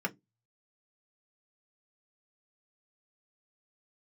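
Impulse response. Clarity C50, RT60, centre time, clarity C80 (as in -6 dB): 25.5 dB, 0.15 s, 5 ms, 37.5 dB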